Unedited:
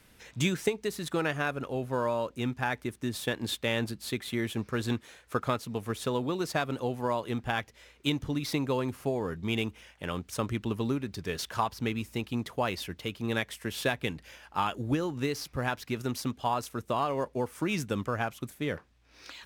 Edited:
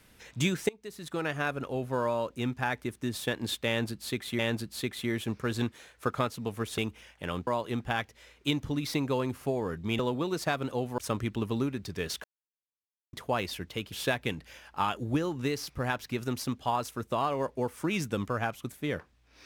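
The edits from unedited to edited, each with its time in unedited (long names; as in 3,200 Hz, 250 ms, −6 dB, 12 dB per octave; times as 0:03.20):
0:00.69–0:01.47: fade in, from −20 dB
0:03.68–0:04.39: repeat, 2 plays
0:06.07–0:07.06: swap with 0:09.58–0:10.27
0:11.53–0:12.42: silence
0:13.21–0:13.70: remove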